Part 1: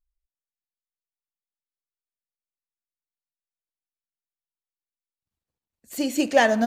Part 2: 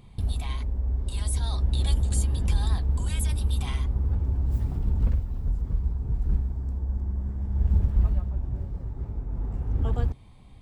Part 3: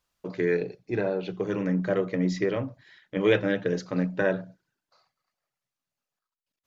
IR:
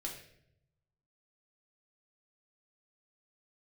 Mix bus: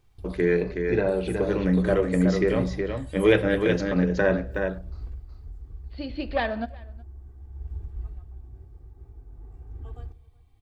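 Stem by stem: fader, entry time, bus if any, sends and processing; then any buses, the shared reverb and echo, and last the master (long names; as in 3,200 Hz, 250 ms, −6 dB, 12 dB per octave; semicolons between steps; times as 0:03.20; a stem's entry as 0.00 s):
−8.5 dB, 0.00 s, send −14 dB, echo send −23.5 dB, phase distortion by the signal itself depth 0.091 ms; Chebyshev low-pass filter 4,600 Hz, order 6
−18.0 dB, 0.00 s, send −9 dB, echo send −22 dB, comb filter 2.6 ms, depth 69%; bit-depth reduction 12 bits, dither triangular
+1.0 dB, 0.00 s, send −8.5 dB, echo send −3.5 dB, high-shelf EQ 5,400 Hz −5.5 dB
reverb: on, RT60 0.75 s, pre-delay 3 ms
echo: single-tap delay 370 ms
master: no processing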